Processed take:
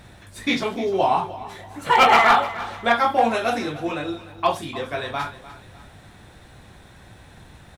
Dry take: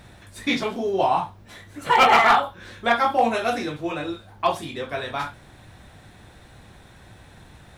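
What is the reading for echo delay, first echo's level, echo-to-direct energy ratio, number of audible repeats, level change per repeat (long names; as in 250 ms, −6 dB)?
300 ms, −16.0 dB, −15.5 dB, 3, −8.5 dB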